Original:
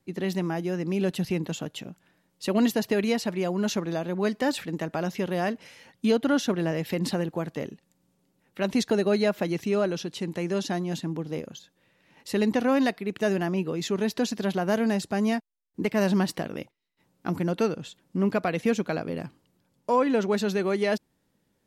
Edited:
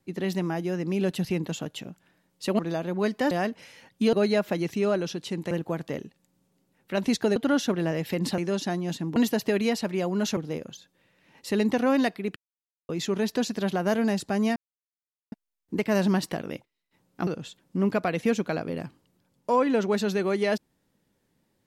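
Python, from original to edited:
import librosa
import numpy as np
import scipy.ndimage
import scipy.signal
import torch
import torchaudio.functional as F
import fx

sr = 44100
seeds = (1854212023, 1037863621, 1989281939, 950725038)

y = fx.edit(x, sr, fx.move(start_s=2.59, length_s=1.21, to_s=11.19),
    fx.cut(start_s=4.52, length_s=0.82),
    fx.swap(start_s=6.16, length_s=1.02, other_s=9.03, other_length_s=1.38),
    fx.silence(start_s=13.18, length_s=0.53),
    fx.insert_silence(at_s=15.38, length_s=0.76),
    fx.cut(start_s=17.33, length_s=0.34), tone=tone)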